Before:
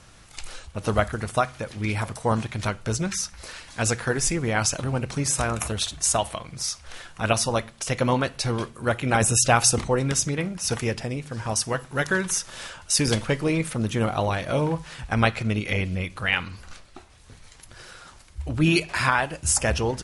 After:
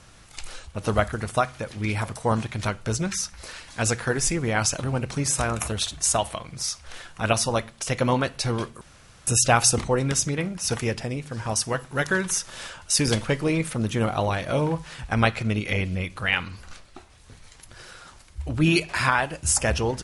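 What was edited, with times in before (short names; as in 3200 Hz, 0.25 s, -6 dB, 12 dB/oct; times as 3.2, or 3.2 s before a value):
8.81–9.27 room tone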